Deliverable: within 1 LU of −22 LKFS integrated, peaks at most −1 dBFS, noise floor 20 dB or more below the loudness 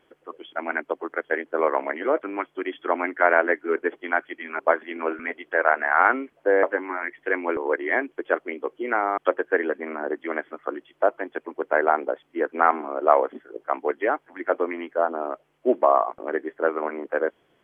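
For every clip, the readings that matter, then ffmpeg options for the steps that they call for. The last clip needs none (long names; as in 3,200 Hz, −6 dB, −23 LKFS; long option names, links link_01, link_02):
integrated loudness −25.0 LKFS; sample peak −1.5 dBFS; target loudness −22.0 LKFS
→ -af "volume=3dB,alimiter=limit=-1dB:level=0:latency=1"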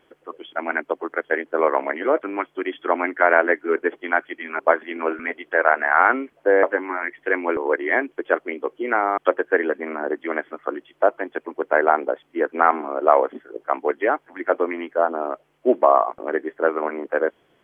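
integrated loudness −22.0 LKFS; sample peak −1.0 dBFS; background noise floor −63 dBFS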